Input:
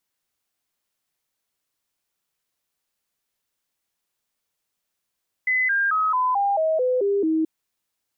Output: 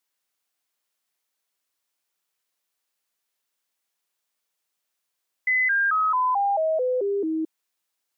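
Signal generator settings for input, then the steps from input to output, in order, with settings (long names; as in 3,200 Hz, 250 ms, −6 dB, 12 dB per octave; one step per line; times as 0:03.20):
stepped sweep 2,020 Hz down, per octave 3, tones 9, 0.22 s, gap 0.00 s −18 dBFS
high-pass filter 430 Hz 6 dB per octave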